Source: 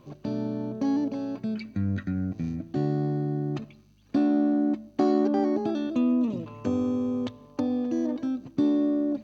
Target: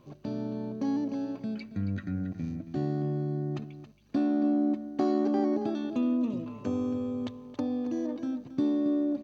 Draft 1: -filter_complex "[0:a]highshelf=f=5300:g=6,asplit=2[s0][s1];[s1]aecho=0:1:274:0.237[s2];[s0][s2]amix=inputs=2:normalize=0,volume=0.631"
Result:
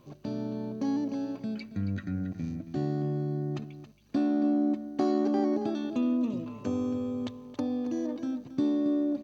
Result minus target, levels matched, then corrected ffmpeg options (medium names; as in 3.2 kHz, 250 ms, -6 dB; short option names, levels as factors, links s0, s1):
8 kHz band +3.5 dB
-filter_complex "[0:a]asplit=2[s0][s1];[s1]aecho=0:1:274:0.237[s2];[s0][s2]amix=inputs=2:normalize=0,volume=0.631"